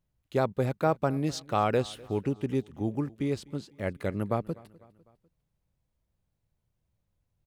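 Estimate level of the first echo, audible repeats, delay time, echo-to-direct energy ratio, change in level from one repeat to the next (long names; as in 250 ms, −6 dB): −23.0 dB, 3, 250 ms, −21.5 dB, −5.5 dB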